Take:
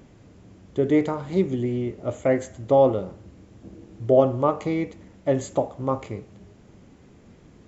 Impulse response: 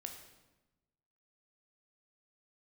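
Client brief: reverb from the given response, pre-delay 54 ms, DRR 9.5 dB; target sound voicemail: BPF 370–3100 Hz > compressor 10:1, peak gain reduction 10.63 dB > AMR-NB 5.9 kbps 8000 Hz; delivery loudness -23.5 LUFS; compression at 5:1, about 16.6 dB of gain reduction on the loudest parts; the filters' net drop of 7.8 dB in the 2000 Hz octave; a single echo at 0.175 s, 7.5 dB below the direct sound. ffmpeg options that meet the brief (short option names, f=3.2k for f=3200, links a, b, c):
-filter_complex "[0:a]equalizer=f=2k:t=o:g=-8,acompressor=threshold=-32dB:ratio=5,aecho=1:1:175:0.422,asplit=2[a][b];[1:a]atrim=start_sample=2205,adelay=54[c];[b][c]afir=irnorm=-1:irlink=0,volume=-6dB[d];[a][d]amix=inputs=2:normalize=0,highpass=370,lowpass=3.1k,acompressor=threshold=-39dB:ratio=10,volume=23dB" -ar 8000 -c:a libopencore_amrnb -b:a 5900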